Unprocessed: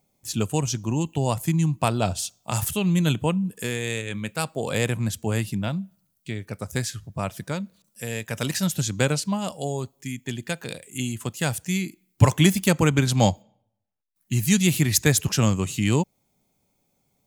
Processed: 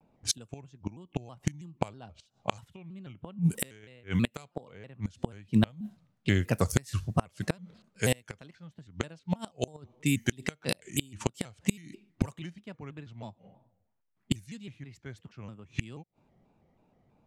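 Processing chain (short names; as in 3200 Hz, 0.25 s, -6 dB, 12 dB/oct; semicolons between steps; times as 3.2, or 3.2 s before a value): flipped gate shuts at -17 dBFS, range -30 dB; low-pass opened by the level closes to 1600 Hz, open at -33 dBFS; shaped vibrato square 3.1 Hz, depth 160 cents; gain +6 dB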